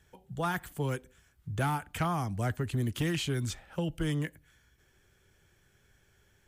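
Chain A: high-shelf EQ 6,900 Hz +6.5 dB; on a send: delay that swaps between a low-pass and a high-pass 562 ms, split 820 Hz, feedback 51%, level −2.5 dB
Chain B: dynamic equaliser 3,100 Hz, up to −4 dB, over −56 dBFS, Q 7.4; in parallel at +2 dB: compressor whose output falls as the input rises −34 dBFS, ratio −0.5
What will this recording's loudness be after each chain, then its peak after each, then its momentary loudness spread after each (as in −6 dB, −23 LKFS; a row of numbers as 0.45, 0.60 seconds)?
−32.0, −29.0 LKFS; −17.0, −15.0 dBFS; 17, 7 LU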